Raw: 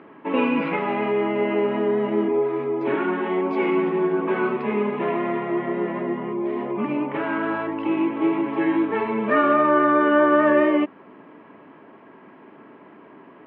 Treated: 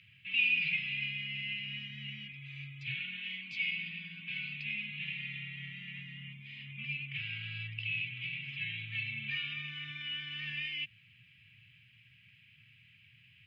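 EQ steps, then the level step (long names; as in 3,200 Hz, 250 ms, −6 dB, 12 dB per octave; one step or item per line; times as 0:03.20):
dynamic equaliser 1,300 Hz, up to −7 dB, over −34 dBFS, Q 1.8
Chebyshev band-stop filter 120–2,500 Hz, order 4
+6.0 dB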